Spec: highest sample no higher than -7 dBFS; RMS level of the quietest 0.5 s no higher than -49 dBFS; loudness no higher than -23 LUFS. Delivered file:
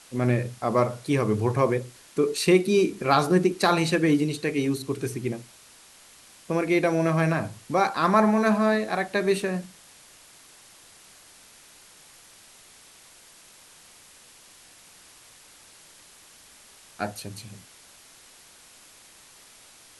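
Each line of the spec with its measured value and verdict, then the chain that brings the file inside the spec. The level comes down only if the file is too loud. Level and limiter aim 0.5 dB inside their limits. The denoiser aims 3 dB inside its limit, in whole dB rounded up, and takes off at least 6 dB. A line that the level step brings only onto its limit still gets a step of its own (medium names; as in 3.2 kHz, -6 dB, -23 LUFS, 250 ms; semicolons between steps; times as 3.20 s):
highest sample -5.5 dBFS: fail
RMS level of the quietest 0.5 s -52 dBFS: pass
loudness -24.0 LUFS: pass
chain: peak limiter -7.5 dBFS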